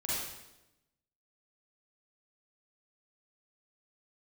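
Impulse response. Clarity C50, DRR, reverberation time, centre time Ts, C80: -4.0 dB, -8.5 dB, 0.95 s, 94 ms, 0.5 dB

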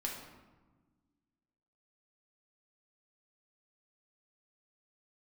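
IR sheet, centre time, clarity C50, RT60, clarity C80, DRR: 47 ms, 3.5 dB, 1.3 s, 6.0 dB, -2.0 dB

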